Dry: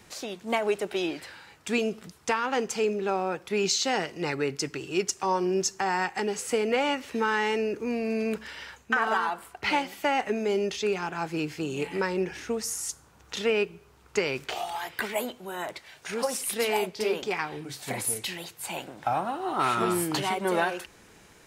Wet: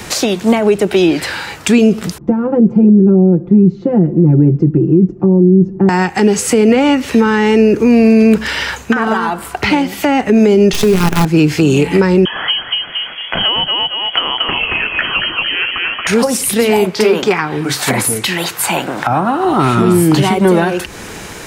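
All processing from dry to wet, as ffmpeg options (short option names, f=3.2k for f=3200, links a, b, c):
-filter_complex "[0:a]asettb=1/sr,asplit=3[a][b][c];[a]atrim=end=2.184[d];[b]atrim=start=2.18:end=5.89,asetpts=PTS-STARTPTS,afade=t=in:d=0.004:c=qsin,afade=t=out:st=3.706:d=0.004:c=qsin,lowpass=f=260:t=q:w=1.5,aecho=1:1:5.8:0.93,atrim=end_sample=163611[e];[c]atrim=start=5.886[f];[d][e]acrossfade=d=0.004:c1=hsin:c2=qsin[g];[g][f]acrossfade=d=0.004:c1=qsin:c2=hsin,asettb=1/sr,asplit=3[h][i][j];[h]atrim=end=10.734[k];[i]atrim=start=10.73:end=11.25,asetpts=PTS-STARTPTS,afade=t=in:d=0.004:c=qsin,afade=t=out:st=0.516:d=0.004:c=qsin,aecho=1:1:4.9:0.8,atrim=end_sample=22932,acrusher=bits=5:dc=4:mix=0:aa=0.000001[l];[j]atrim=start=11.246[m];[k][l]acrossfade=d=0.004:c1=hsin:c2=qsin[n];[n][m]acrossfade=d=0.004:c1=qsin:c2=hsin,asettb=1/sr,asplit=3[o][p][q];[o]atrim=end=12.254[r];[p]atrim=start=12.25:end=16.07,asetpts=PTS-STARTPTS,afade=t=in:d=0.004:c=qsin,afade=t=out:st=3.816:d=0.004:c=qsin,asplit=5[s][t][u][v][w];[t]adelay=227,afreqshift=30,volume=-4dB[x];[u]adelay=454,afreqshift=60,volume=-13.9dB[y];[v]adelay=681,afreqshift=90,volume=-23.8dB[z];[w]adelay=908,afreqshift=120,volume=-33.7dB[aa];[s][x][y][z][aa]amix=inputs=5:normalize=0,atrim=end_sample=168462,lowpass=f=2.9k:t=q:w=0.5098,lowpass=f=2.9k:t=q:w=0.6013,lowpass=f=2.9k:t=q:w=0.9,lowpass=f=2.9k:t=q:w=2.563,afreqshift=-3400[ab];[q]atrim=start=16.066[ac];[r][ab]acrossfade=d=0.004:c1=hsin:c2=qsin[ad];[ad][ac]acrossfade=d=0.004:c1=qsin:c2=hsin,asettb=1/sr,asplit=3[ae][af][ag];[ae]atrim=end=16.854[ah];[af]atrim=start=16.85:end=19.45,asetpts=PTS-STARTPTS,afade=t=in:d=0.004:c=qsin,afade=t=out:st=2.596:d=0.004:c=qsin,highpass=f=190:p=1,equalizer=f=1.3k:t=o:w=1.4:g=8[ai];[ag]atrim=start=19.446[aj];[ah][ai]acrossfade=d=0.004:c1=hsin:c2=qsin[ak];[ak][aj]acrossfade=d=0.004:c1=qsin:c2=hsin,acrossover=split=300[al][am];[am]acompressor=threshold=-40dB:ratio=6[an];[al][an]amix=inputs=2:normalize=0,alimiter=level_in=26.5dB:limit=-1dB:release=50:level=0:latency=1,volume=-1dB"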